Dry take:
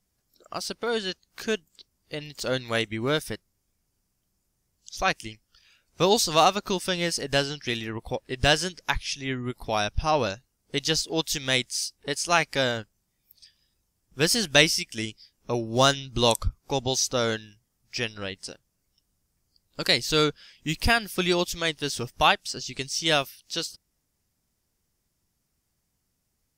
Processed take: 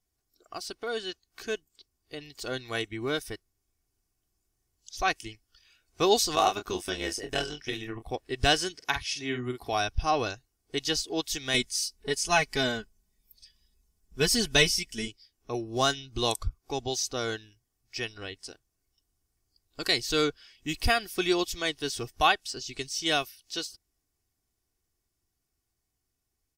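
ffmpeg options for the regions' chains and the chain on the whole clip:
-filter_complex "[0:a]asettb=1/sr,asplit=3[a][b][c];[a]atrim=end=6.354[d];[b]atrim=start=6.35:end=8.12,asetpts=PTS-STARTPTS,afade=t=in:d=0.004:c=qsin,afade=t=out:st=1.766:d=0.004:c=qsin,equalizer=f=4.4k:w=7.3:g=-10,tremolo=f=100:d=0.857,asplit=2[e][f];[f]adelay=27,volume=-8dB[g];[e][g]amix=inputs=2:normalize=0,atrim=end_sample=78057[h];[c]atrim=start=8.116[i];[d][h]acrossfade=d=0.004:c1=hsin:c2=qsin[j];[j][i]acrossfade=d=0.004:c1=qsin:c2=hsin,asettb=1/sr,asplit=3[k][l][m];[k]atrim=end=8.754[n];[l]atrim=start=8.75:end=9.73,asetpts=PTS-STARTPTS,afade=t=in:d=0.004:c=qsin,afade=t=out:st=0.976:d=0.004:c=qsin,highpass=86,asplit=2[o][p];[p]adelay=48,volume=-6.5dB[q];[o][q]amix=inputs=2:normalize=0,atrim=end_sample=43218[r];[m]atrim=start=9.726[s];[n][r]acrossfade=d=0.004:c1=hsin:c2=qsin[t];[t][s]acrossfade=d=0.004:c1=qsin:c2=hsin,asettb=1/sr,asplit=3[u][v][w];[u]atrim=end=11.544[x];[v]atrim=start=11.54:end=15.08,asetpts=PTS-STARTPTS,afade=t=in:d=0.004:c=qsin,afade=t=out:st=3.536:d=0.004:c=qsin,bass=f=250:g=9,treble=f=4k:g=2,aecho=1:1:4.7:0.75,atrim=end_sample=156114[y];[w]atrim=start=15.076[z];[x][y]acrossfade=d=0.004:c1=hsin:c2=qsin[aa];[aa][z]acrossfade=d=0.004:c1=qsin:c2=hsin,aecho=1:1:2.7:0.55,dynaudnorm=f=940:g=9:m=11.5dB,volume=-7dB"

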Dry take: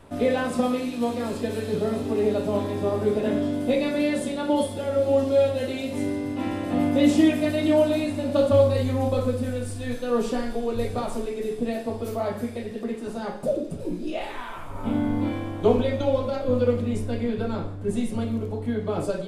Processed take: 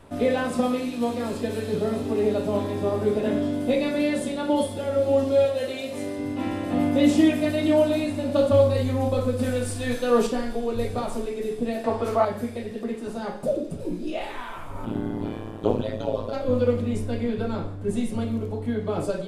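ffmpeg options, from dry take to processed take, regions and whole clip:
-filter_complex "[0:a]asettb=1/sr,asplit=3[a][b][c];[a]atrim=end=5.454[d];[b]atrim=start=5.45:end=6.19,asetpts=PTS-STARTPTS,afade=t=in:d=0.004:c=qsin,afade=t=out:st=0.736:d=0.004:c=qsin,highpass=f=270:p=1,aecho=1:1:1.7:0.31,atrim=end_sample=32634[e];[c]atrim=start=6.186[f];[d][e]acrossfade=d=0.004:c1=hsin:c2=qsin[g];[g][f]acrossfade=d=0.004:c1=qsin:c2=hsin,asettb=1/sr,asplit=3[h][i][j];[h]atrim=end=9.394[k];[i]atrim=start=9.39:end=10.27,asetpts=PTS-STARTPTS,afade=t=in:d=0.004:c=qsin,afade=t=out:st=0.876:d=0.004:c=qsin,lowshelf=f=330:g=-5.5,acontrast=55[l];[j]atrim=start=10.266[m];[k][l]acrossfade=d=0.004:c1=hsin:c2=qsin[n];[n][m]acrossfade=d=0.004:c1=qsin:c2=hsin,asettb=1/sr,asplit=3[o][p][q];[o]atrim=end=11.844[r];[p]atrim=start=11.84:end=12.25,asetpts=PTS-STARTPTS,afade=t=in:d=0.004:c=qsin,afade=t=out:st=0.406:d=0.004:c=qsin,lowpass=10k,equalizer=f=1.2k:t=o:w=2.2:g=12,acompressor=mode=upward:threshold=-27dB:ratio=2.5:attack=3.2:release=140:knee=2.83:detection=peak[s];[q]atrim=start=12.246[t];[r][s]acrossfade=d=0.004:c1=hsin:c2=qsin[u];[u][t]acrossfade=d=0.004:c1=qsin:c2=hsin,asettb=1/sr,asplit=3[v][w][x];[v]atrim=end=14.854[y];[w]atrim=start=14.85:end=16.33,asetpts=PTS-STARTPTS,afade=t=in:d=0.004:c=qsin,afade=t=out:st=1.476:d=0.004:c=qsin,tremolo=f=110:d=1,bandreject=f=2.2k:w=6.4[z];[x]atrim=start=16.326[aa];[y][z]acrossfade=d=0.004:c1=hsin:c2=qsin[ab];[ab][aa]acrossfade=d=0.004:c1=qsin:c2=hsin"

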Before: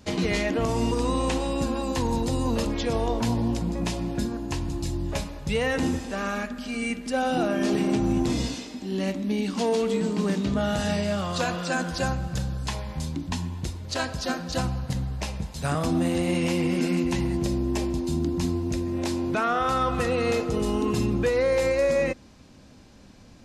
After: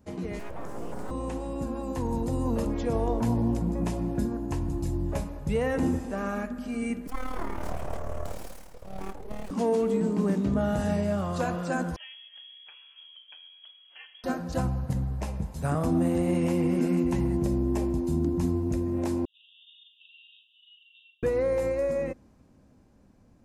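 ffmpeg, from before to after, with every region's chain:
-filter_complex "[0:a]asettb=1/sr,asplit=3[a][b][c];[a]atrim=end=0.394[d];[b]atrim=start=0.39:end=1.11,asetpts=PTS-STARTPTS,afade=t=in:d=0.004:c=qsin,afade=t=out:st=0.716:d=0.004:c=qsin,bandreject=f=50:t=h:w=6,bandreject=f=100:t=h:w=6,bandreject=f=150:t=h:w=6,bandreject=f=200:t=h:w=6,bandreject=f=250:t=h:w=6,bandreject=f=300:t=h:w=6,bandreject=f=350:t=h:w=6,bandreject=f=400:t=h:w=6,bandreject=f=450:t=h:w=6,aeval=exprs='abs(val(0))':c=same[e];[c]atrim=start=1.106[f];[d][e]acrossfade=d=0.004:c1=hsin:c2=qsin[g];[g][f]acrossfade=d=0.004:c1=qsin:c2=hsin,asettb=1/sr,asplit=3[h][i][j];[h]atrim=end=7.074[k];[i]atrim=start=7.07:end=9.51,asetpts=PTS-STARTPTS,afade=t=in:d=0.004:c=qsin,afade=t=out:st=2.436:d=0.004:c=qsin,highpass=290,aeval=exprs='abs(val(0))':c=same,tremolo=f=37:d=0.621[l];[j]atrim=start=9.506[m];[k][l]acrossfade=d=0.004:c1=hsin:c2=qsin[n];[n][m]acrossfade=d=0.004:c1=qsin:c2=hsin,asettb=1/sr,asplit=3[o][p][q];[o]atrim=end=11.964[r];[p]atrim=start=11.96:end=14.24,asetpts=PTS-STARTPTS,afade=t=in:d=0.004:c=qsin,afade=t=out:st=2.276:d=0.004:c=qsin,lowpass=f=2.9k:t=q:w=0.5098,lowpass=f=2.9k:t=q:w=0.6013,lowpass=f=2.9k:t=q:w=0.9,lowpass=f=2.9k:t=q:w=2.563,afreqshift=-3400,aderivative[s];[q]atrim=start=14.236[t];[r][s]acrossfade=d=0.004:c1=hsin:c2=qsin[u];[u][t]acrossfade=d=0.004:c1=qsin:c2=hsin,asettb=1/sr,asplit=3[v][w][x];[v]atrim=end=19.254[y];[w]atrim=start=19.25:end=21.23,asetpts=PTS-STARTPTS,afade=t=in:d=0.004:c=qsin,afade=t=out:st=1.976:d=0.004:c=qsin,asuperpass=centerf=3200:order=20:qfactor=3,asplit=2[z][aa];[aa]adelay=39,volume=-2dB[ab];[z][ab]amix=inputs=2:normalize=0,atrim=end_sample=87318[ac];[x]atrim=start=21.226[ad];[y][ac]acrossfade=d=0.004:c1=hsin:c2=qsin[ae];[ae][ad]acrossfade=d=0.004:c1=qsin:c2=hsin,equalizer=f=3.9k:t=o:w=2.1:g=-14.5,dynaudnorm=f=200:g=21:m=8dB,volume=-8dB"

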